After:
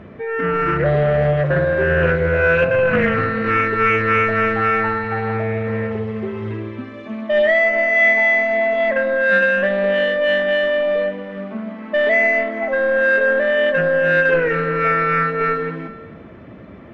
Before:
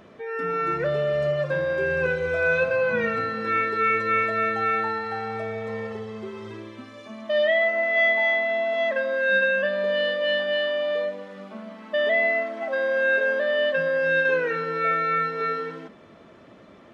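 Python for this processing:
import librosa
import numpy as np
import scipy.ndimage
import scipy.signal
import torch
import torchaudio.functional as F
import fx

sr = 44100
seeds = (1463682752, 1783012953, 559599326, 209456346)

p1 = scipy.signal.sosfilt(scipy.signal.butter(2, 49.0, 'highpass', fs=sr, output='sos'), x)
p2 = fx.peak_eq(p1, sr, hz=2100.0, db=10.5, octaves=1.4)
p3 = 10.0 ** (-19.0 / 20.0) * np.tanh(p2 / 10.0 ** (-19.0 / 20.0))
p4 = p2 + (p3 * librosa.db_to_amplitude(-10.0))
p5 = fx.tilt_eq(p4, sr, slope=-4.5)
p6 = p5 + fx.echo_single(p5, sr, ms=398, db=-17.0, dry=0)
y = fx.doppler_dist(p6, sr, depth_ms=0.21)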